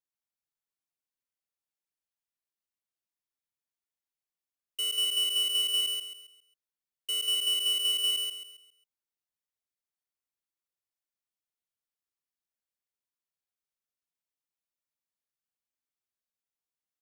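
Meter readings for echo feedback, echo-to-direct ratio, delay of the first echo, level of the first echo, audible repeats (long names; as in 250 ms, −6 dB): 36%, −3.5 dB, 135 ms, −4.0 dB, 4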